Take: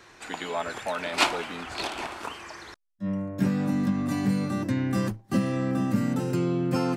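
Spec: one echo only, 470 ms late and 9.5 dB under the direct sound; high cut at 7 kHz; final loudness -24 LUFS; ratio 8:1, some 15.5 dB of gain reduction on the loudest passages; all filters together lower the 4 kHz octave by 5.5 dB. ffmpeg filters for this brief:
-af "lowpass=7000,equalizer=f=4000:t=o:g=-7,acompressor=threshold=0.0158:ratio=8,aecho=1:1:470:0.335,volume=5.96"

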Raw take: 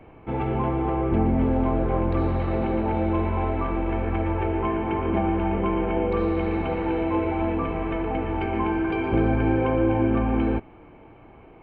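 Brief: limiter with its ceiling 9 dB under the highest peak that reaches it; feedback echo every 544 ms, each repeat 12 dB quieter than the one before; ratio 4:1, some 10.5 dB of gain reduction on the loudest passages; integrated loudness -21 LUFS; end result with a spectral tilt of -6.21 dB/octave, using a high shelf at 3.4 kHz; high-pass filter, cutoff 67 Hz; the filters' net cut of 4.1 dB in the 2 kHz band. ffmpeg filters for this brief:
-af "highpass=67,equalizer=f=2000:t=o:g=-7,highshelf=f=3400:g=5.5,acompressor=threshold=0.0282:ratio=4,alimiter=level_in=2:limit=0.0631:level=0:latency=1,volume=0.501,aecho=1:1:544|1088|1632:0.251|0.0628|0.0157,volume=7.08"

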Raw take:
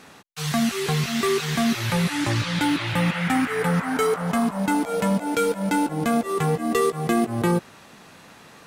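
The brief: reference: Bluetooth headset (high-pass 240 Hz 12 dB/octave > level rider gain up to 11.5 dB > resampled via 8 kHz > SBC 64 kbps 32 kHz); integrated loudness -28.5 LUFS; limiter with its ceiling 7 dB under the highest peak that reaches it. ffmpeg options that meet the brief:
-af "alimiter=limit=0.211:level=0:latency=1,highpass=240,dynaudnorm=m=3.76,aresample=8000,aresample=44100,volume=0.794" -ar 32000 -c:a sbc -b:a 64k

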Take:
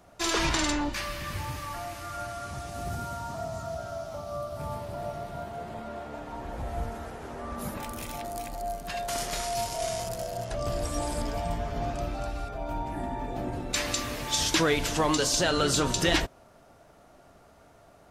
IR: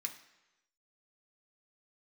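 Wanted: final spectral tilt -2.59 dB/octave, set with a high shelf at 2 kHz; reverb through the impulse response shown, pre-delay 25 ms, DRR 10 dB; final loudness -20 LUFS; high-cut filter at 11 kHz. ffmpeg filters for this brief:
-filter_complex "[0:a]lowpass=11000,highshelf=f=2000:g=4,asplit=2[s0][s1];[1:a]atrim=start_sample=2205,adelay=25[s2];[s1][s2]afir=irnorm=-1:irlink=0,volume=0.376[s3];[s0][s3]amix=inputs=2:normalize=0,volume=2.66"

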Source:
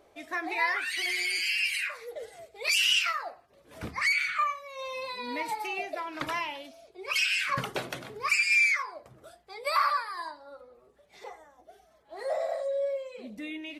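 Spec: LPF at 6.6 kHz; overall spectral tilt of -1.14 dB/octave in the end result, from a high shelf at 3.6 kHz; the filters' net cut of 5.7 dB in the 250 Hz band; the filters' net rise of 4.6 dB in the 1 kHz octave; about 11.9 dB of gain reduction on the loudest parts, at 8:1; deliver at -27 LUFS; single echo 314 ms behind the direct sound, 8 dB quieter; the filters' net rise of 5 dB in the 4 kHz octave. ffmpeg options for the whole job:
-af "lowpass=6600,equalizer=f=250:t=o:g=-8.5,equalizer=f=1000:t=o:g=5,highshelf=f=3600:g=6,equalizer=f=4000:t=o:g=3.5,acompressor=threshold=0.0355:ratio=8,aecho=1:1:314:0.398,volume=1.78"

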